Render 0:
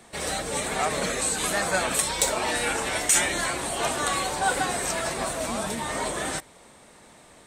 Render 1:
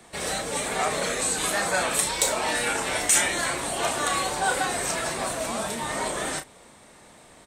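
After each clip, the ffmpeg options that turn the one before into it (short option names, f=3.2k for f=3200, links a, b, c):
-filter_complex "[0:a]acrossover=split=370|7900[a][b][c];[a]alimiter=level_in=9dB:limit=-24dB:level=0:latency=1,volume=-9dB[d];[d][b][c]amix=inputs=3:normalize=0,asplit=2[e][f];[f]adelay=34,volume=-8dB[g];[e][g]amix=inputs=2:normalize=0"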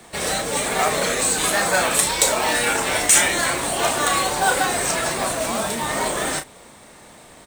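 -af "acrusher=bits=3:mode=log:mix=0:aa=0.000001,volume=5.5dB"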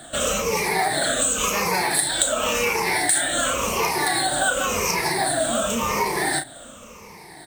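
-af "afftfilt=real='re*pow(10,17/40*sin(2*PI*(0.82*log(max(b,1)*sr/1024/100)/log(2)-(-0.92)*(pts-256)/sr)))':imag='im*pow(10,17/40*sin(2*PI*(0.82*log(max(b,1)*sr/1024/100)/log(2)-(-0.92)*(pts-256)/sr)))':win_size=1024:overlap=0.75,acompressor=threshold=-19dB:ratio=4"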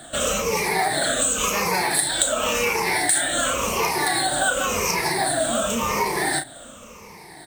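-af anull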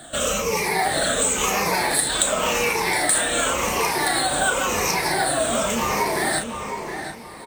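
-filter_complex "[0:a]asplit=2[a][b];[b]adelay=715,lowpass=f=2.7k:p=1,volume=-6.5dB,asplit=2[c][d];[d]adelay=715,lowpass=f=2.7k:p=1,volume=0.28,asplit=2[e][f];[f]adelay=715,lowpass=f=2.7k:p=1,volume=0.28,asplit=2[g][h];[h]adelay=715,lowpass=f=2.7k:p=1,volume=0.28[i];[a][c][e][g][i]amix=inputs=5:normalize=0"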